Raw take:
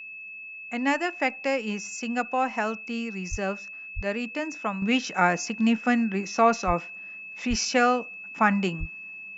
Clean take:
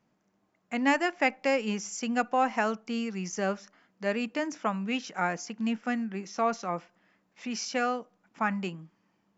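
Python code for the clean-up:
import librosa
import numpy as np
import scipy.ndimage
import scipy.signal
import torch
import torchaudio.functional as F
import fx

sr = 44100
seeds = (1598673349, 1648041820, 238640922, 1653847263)

y = fx.notch(x, sr, hz=2600.0, q=30.0)
y = fx.fix_deplosive(y, sr, at_s=(3.3, 3.95, 6.66, 7.49, 8.79))
y = fx.fix_level(y, sr, at_s=4.82, step_db=-7.5)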